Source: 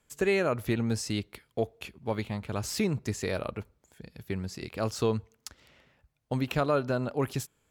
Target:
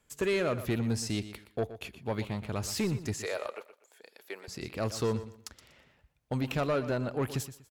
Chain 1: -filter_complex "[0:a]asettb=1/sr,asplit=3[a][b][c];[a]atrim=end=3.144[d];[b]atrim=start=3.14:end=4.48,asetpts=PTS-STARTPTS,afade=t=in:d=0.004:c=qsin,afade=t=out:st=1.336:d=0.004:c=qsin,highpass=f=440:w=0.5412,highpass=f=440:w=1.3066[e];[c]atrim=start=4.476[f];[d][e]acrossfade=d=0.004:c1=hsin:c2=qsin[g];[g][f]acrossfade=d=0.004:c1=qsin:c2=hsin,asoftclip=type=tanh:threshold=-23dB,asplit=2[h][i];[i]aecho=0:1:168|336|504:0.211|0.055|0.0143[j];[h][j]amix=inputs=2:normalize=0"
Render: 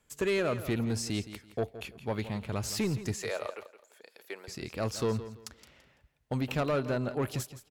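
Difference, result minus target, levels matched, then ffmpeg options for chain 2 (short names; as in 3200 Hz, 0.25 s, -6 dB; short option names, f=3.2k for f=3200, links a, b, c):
echo 47 ms late
-filter_complex "[0:a]asettb=1/sr,asplit=3[a][b][c];[a]atrim=end=3.144[d];[b]atrim=start=3.14:end=4.48,asetpts=PTS-STARTPTS,afade=t=in:d=0.004:c=qsin,afade=t=out:st=1.336:d=0.004:c=qsin,highpass=f=440:w=0.5412,highpass=f=440:w=1.3066[e];[c]atrim=start=4.476[f];[d][e]acrossfade=d=0.004:c1=hsin:c2=qsin[g];[g][f]acrossfade=d=0.004:c1=qsin:c2=hsin,asoftclip=type=tanh:threshold=-23dB,asplit=2[h][i];[i]aecho=0:1:121|242|363:0.211|0.055|0.0143[j];[h][j]amix=inputs=2:normalize=0"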